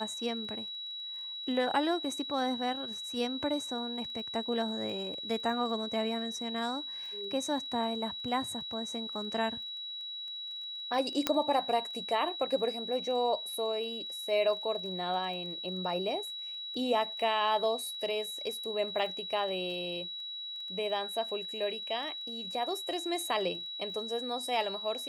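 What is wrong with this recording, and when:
surface crackle 15 per second −42 dBFS
whistle 3,900 Hz −38 dBFS
0:11.27: click −11 dBFS

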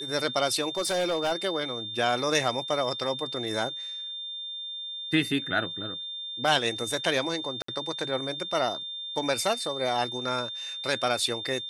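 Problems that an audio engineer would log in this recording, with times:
whistle 3,600 Hz −34 dBFS
0:00.77–0:01.33: clipping −22 dBFS
0:07.62–0:07.68: drop-out 64 ms

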